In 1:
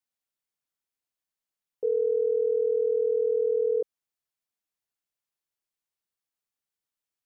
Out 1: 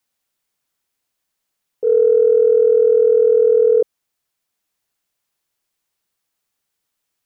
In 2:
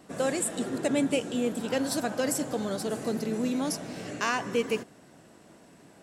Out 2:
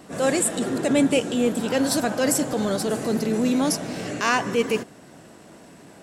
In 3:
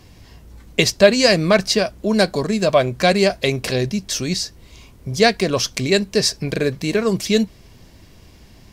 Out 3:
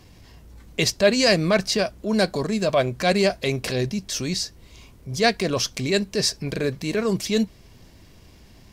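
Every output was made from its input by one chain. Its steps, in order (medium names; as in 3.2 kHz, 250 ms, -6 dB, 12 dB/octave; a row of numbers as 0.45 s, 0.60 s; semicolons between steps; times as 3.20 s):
transient shaper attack -6 dB, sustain -1 dB; peak normalisation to -6 dBFS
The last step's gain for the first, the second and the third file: +13.5 dB, +8.0 dB, -2.5 dB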